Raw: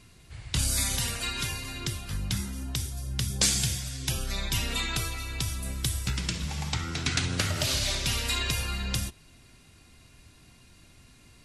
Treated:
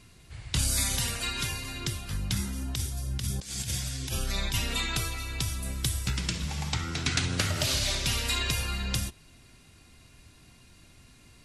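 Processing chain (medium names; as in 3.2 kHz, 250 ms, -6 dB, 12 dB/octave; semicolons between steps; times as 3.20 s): 2.34–4.54 s: compressor with a negative ratio -30 dBFS, ratio -0.5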